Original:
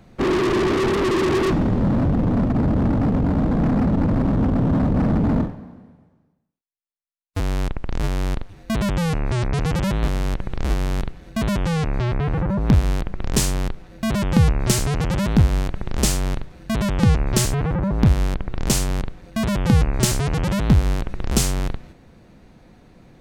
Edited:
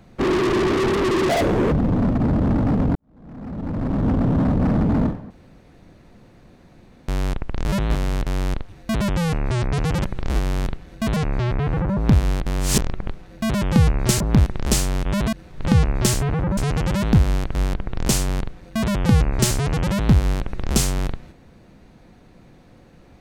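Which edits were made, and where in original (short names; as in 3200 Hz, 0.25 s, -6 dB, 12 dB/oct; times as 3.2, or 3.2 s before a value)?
1.29–2.07 speed 180%
3.3–4.45 fade in quadratic
5.65–7.43 room tone
9.85–10.39 move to 8.07
11.51–11.77 cut
13.06–13.69 reverse
14.81–15.78 swap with 17.89–18.15
16.37–16.97 reverse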